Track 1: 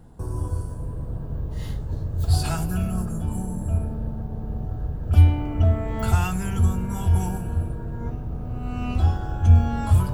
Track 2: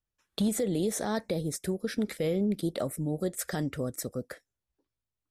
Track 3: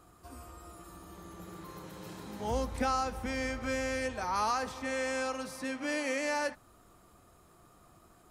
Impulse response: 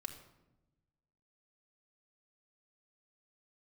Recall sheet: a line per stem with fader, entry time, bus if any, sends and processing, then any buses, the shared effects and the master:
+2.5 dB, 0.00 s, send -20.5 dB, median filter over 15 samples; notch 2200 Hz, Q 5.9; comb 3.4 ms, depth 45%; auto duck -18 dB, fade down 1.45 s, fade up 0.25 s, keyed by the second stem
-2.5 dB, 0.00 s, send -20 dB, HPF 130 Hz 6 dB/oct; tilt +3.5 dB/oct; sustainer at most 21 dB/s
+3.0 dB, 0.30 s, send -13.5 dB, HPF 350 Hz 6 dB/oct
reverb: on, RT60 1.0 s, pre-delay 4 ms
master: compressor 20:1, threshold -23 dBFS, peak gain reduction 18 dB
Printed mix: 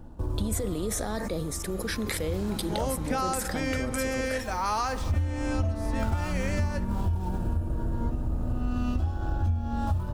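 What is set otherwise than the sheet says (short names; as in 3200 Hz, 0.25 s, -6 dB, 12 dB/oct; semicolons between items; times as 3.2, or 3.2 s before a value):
stem 2: missing tilt +3.5 dB/oct; stem 3: missing HPF 350 Hz 6 dB/oct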